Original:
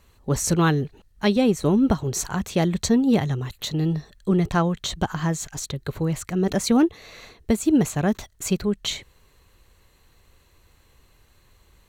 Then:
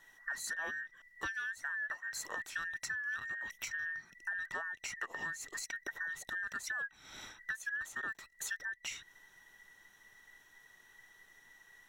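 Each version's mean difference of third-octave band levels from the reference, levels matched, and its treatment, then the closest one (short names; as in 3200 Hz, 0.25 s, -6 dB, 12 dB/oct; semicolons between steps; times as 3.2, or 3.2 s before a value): 11.0 dB: band inversion scrambler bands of 2000 Hz; compressor 5:1, threshold -34 dBFS, peak gain reduction 17.5 dB; gain -5 dB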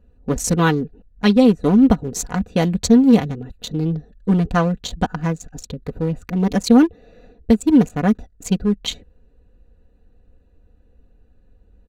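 6.0 dB: Wiener smoothing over 41 samples; comb 4.1 ms, depth 66%; gain +3.5 dB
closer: second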